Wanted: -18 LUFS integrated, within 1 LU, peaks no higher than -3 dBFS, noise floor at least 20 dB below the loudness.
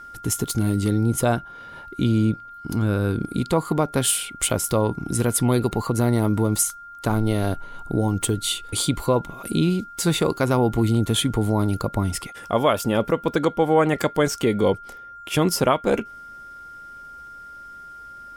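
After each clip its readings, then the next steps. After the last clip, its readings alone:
steady tone 1400 Hz; tone level -38 dBFS; loudness -22.5 LUFS; peak -6.5 dBFS; loudness target -18.0 LUFS
-> notch 1400 Hz, Q 30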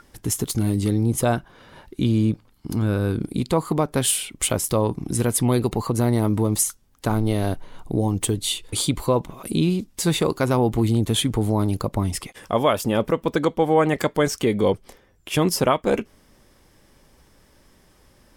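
steady tone none; loudness -22.5 LUFS; peak -6.5 dBFS; loudness target -18.0 LUFS
-> gain +4.5 dB; limiter -3 dBFS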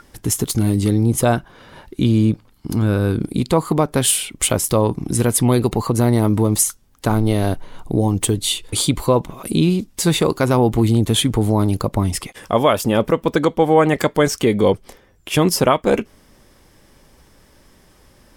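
loudness -18.0 LUFS; peak -3.0 dBFS; noise floor -52 dBFS

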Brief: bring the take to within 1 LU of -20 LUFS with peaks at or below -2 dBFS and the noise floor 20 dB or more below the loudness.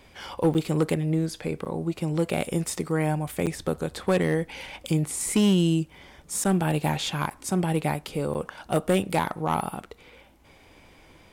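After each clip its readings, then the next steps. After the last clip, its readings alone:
clipped 0.6%; flat tops at -15.0 dBFS; dropouts 6; longest dropout 8.2 ms; loudness -26.5 LUFS; peak -15.0 dBFS; loudness target -20.0 LUFS
-> clip repair -15 dBFS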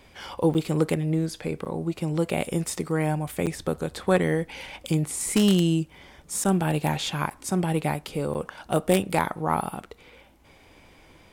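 clipped 0.0%; dropouts 6; longest dropout 8.2 ms
-> interpolate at 0.54/1.65/3.46/6.44/7.3/8.34, 8.2 ms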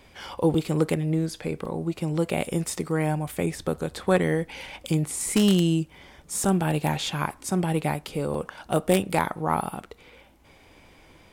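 dropouts 0; loudness -26.0 LUFS; peak -6.0 dBFS; loudness target -20.0 LUFS
-> gain +6 dB; limiter -2 dBFS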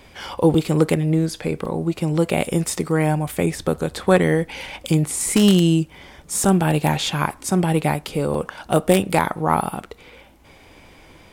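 loudness -20.0 LUFS; peak -2.0 dBFS; noise floor -48 dBFS

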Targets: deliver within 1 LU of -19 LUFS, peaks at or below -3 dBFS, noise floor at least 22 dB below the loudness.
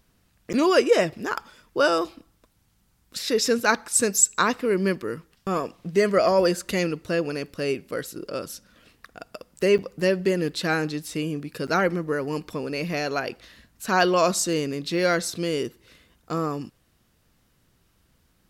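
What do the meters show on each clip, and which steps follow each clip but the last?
dropouts 3; longest dropout 8.1 ms; loudness -24.5 LUFS; peak -4.5 dBFS; loudness target -19.0 LUFS
-> interpolate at 0.53/9.78/11.67, 8.1 ms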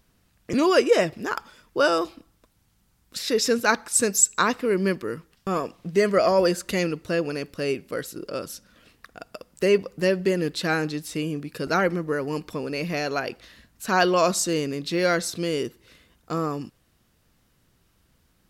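dropouts 0; loudness -24.5 LUFS; peak -4.5 dBFS; loudness target -19.0 LUFS
-> gain +5.5 dB; limiter -3 dBFS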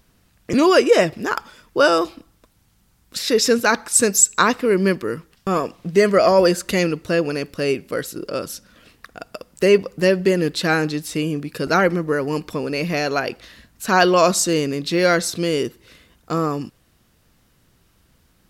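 loudness -19.0 LUFS; peak -3.0 dBFS; noise floor -60 dBFS

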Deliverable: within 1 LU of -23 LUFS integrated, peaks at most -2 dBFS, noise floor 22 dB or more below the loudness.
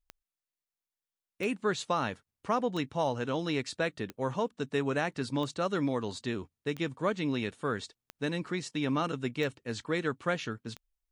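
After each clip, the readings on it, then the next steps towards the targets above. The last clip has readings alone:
clicks 9; loudness -33.0 LUFS; peak -16.0 dBFS; loudness target -23.0 LUFS
-> de-click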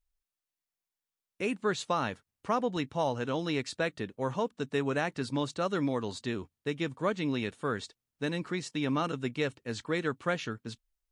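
clicks 0; loudness -33.0 LUFS; peak -16.0 dBFS; loudness target -23.0 LUFS
-> gain +10 dB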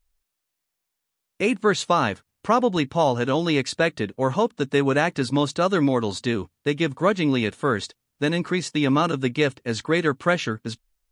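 loudness -23.0 LUFS; peak -6.0 dBFS; noise floor -81 dBFS

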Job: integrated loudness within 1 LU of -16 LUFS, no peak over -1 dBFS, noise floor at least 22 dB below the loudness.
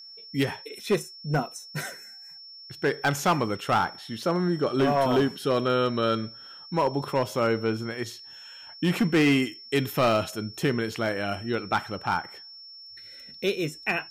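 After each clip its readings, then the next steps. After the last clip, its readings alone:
clipped 1.2%; flat tops at -16.5 dBFS; steady tone 5400 Hz; tone level -43 dBFS; loudness -26.5 LUFS; peak -16.5 dBFS; loudness target -16.0 LUFS
-> clip repair -16.5 dBFS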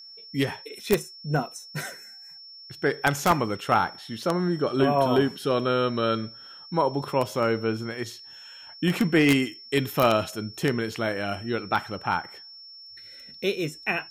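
clipped 0.0%; steady tone 5400 Hz; tone level -43 dBFS
-> notch 5400 Hz, Q 30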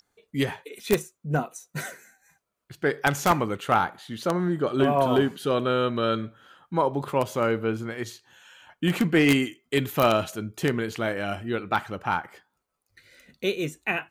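steady tone none; loudness -26.0 LUFS; peak -7.5 dBFS; loudness target -16.0 LUFS
-> gain +10 dB; limiter -1 dBFS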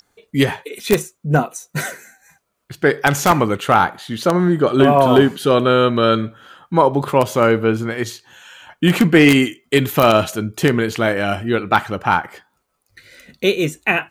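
loudness -16.5 LUFS; peak -1.0 dBFS; noise floor -69 dBFS

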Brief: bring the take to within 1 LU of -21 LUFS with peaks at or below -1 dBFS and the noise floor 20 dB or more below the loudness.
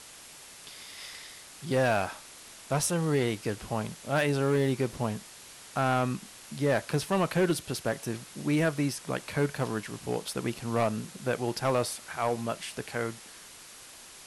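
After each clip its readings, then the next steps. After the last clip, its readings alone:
clipped 1.0%; flat tops at -19.5 dBFS; noise floor -49 dBFS; noise floor target -50 dBFS; loudness -30.0 LUFS; peak -19.5 dBFS; loudness target -21.0 LUFS
-> clip repair -19.5 dBFS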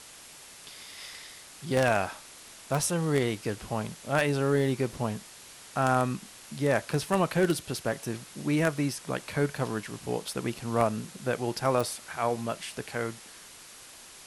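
clipped 0.0%; noise floor -49 dBFS; noise floor target -50 dBFS
-> denoiser 6 dB, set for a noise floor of -49 dBFS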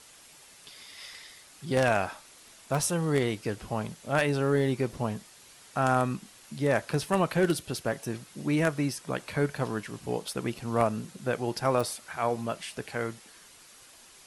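noise floor -54 dBFS; loudness -29.5 LUFS; peak -10.5 dBFS; loudness target -21.0 LUFS
-> gain +8.5 dB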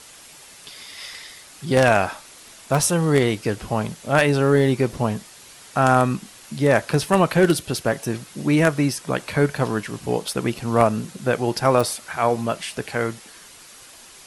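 loudness -21.0 LUFS; peak -2.0 dBFS; noise floor -45 dBFS

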